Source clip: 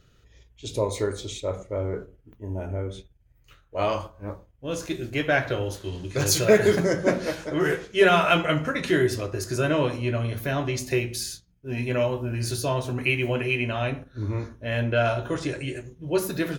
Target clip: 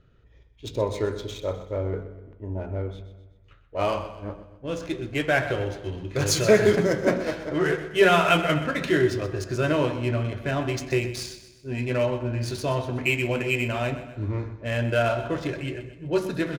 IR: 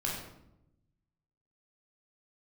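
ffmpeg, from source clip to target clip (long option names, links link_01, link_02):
-filter_complex "[0:a]adynamicsmooth=sensitivity=7.5:basefreq=2400,aecho=1:1:126|252|378|504|630:0.224|0.105|0.0495|0.0232|0.0109,asplit=2[link_01][link_02];[1:a]atrim=start_sample=2205,adelay=136[link_03];[link_02][link_03]afir=irnorm=-1:irlink=0,volume=-26.5dB[link_04];[link_01][link_04]amix=inputs=2:normalize=0"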